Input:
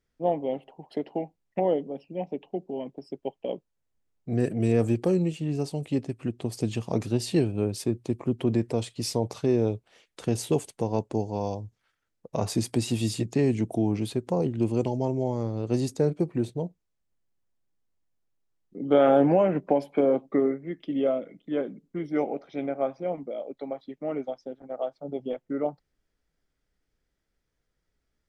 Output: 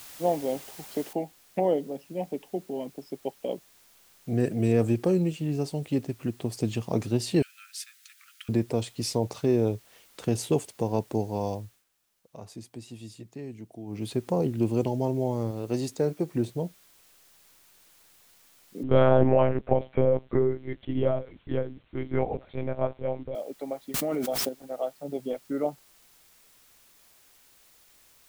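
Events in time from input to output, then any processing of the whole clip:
1.13 noise floor step -46 dB -59 dB
7.42–8.49 steep high-pass 1300 Hz 96 dB/oct
11.56–14.15 dip -16 dB, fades 0.29 s
15.51–16.32 low shelf 250 Hz -6.5 dB
18.83–23.35 monotone LPC vocoder at 8 kHz 130 Hz
23.94–24.49 fast leveller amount 100%

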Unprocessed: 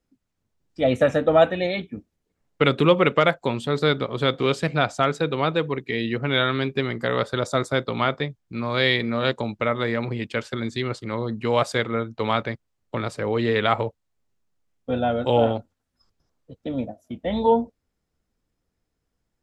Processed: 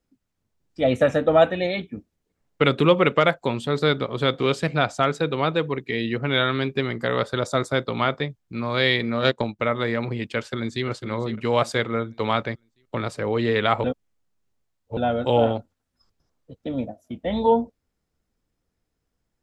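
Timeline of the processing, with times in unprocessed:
9.19–9.59 transient shaper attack +8 dB, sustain -9 dB
10.37–10.85 echo throw 0.5 s, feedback 35%, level -11 dB
13.84–14.97 reverse

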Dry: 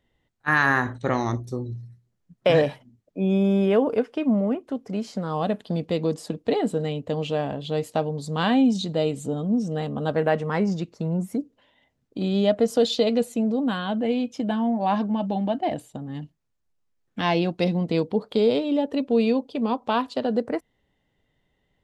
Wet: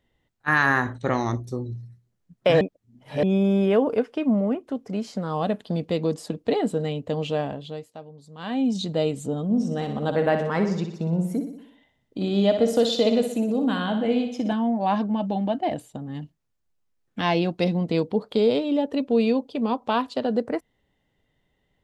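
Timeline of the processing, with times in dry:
2.61–3.23 reverse
7.4–8.85 dip -16.5 dB, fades 0.47 s
9.44–14.53 feedback echo 61 ms, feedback 55%, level -8 dB

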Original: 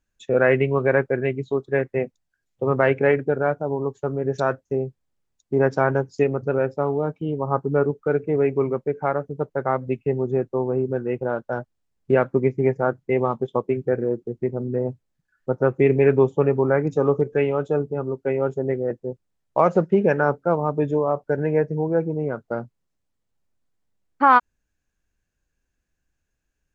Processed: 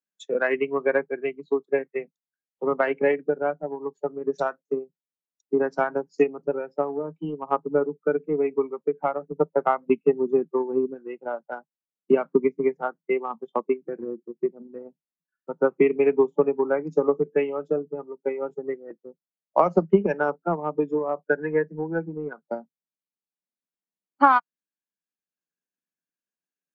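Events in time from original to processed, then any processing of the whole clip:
9.21–10.94 gain +4 dB
21.28–22.33 bell 1600 Hz +10.5 dB 0.45 oct
whole clip: steep high-pass 160 Hz 96 dB/oct; spectral noise reduction 11 dB; transient shaper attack +8 dB, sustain -3 dB; gain -5.5 dB

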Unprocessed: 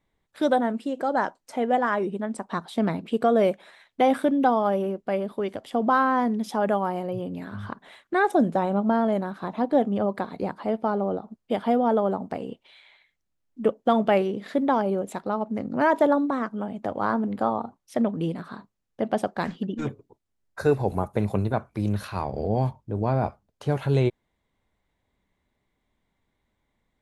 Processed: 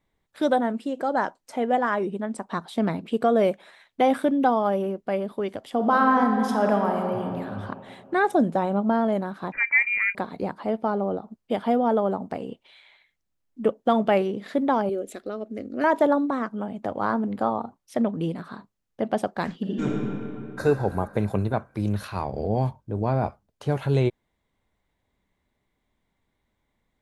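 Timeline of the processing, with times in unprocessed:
5.72–7.39 reverb throw, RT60 2.6 s, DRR 3 dB
9.52–10.15 inverted band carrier 2600 Hz
14.89–15.84 fixed phaser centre 380 Hz, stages 4
19.57–20.6 reverb throw, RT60 2.7 s, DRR -3 dB

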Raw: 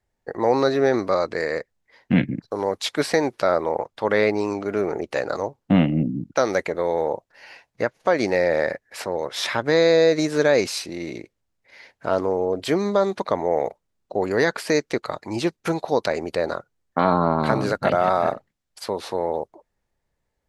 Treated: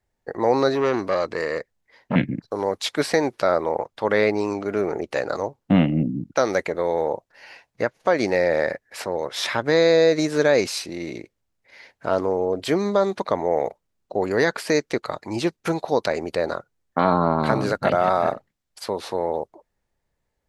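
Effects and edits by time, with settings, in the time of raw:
0.75–2.16 core saturation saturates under 840 Hz

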